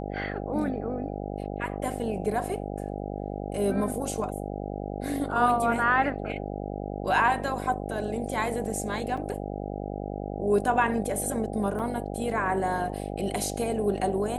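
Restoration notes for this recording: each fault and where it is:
buzz 50 Hz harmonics 16 -34 dBFS
9.17 s: dropout 4.7 ms
11.79–11.80 s: dropout 5.4 ms

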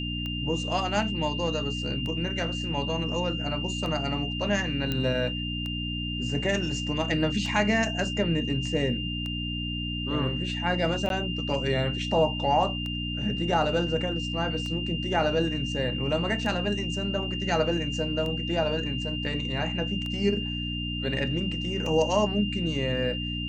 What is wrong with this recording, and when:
hum 60 Hz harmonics 5 -33 dBFS
tick 33 1/3 rpm -22 dBFS
whine 2.8 kHz -33 dBFS
4.92 s: pop -15 dBFS
11.09–11.10 s: dropout 12 ms

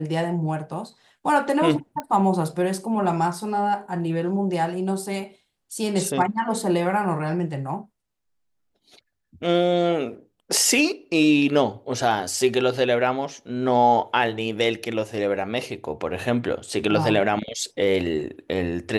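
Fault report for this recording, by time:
2.00 s: pop -16 dBFS

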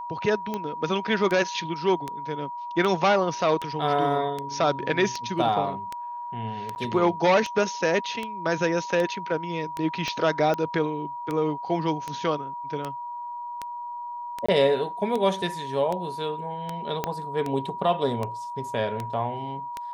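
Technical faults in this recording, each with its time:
tick 78 rpm -16 dBFS
whine 960 Hz -32 dBFS
6.75–6.76 s: dropout 9.9 ms
10.08 s: pop -16 dBFS
14.46–14.48 s: dropout 25 ms
17.04 s: pop -11 dBFS

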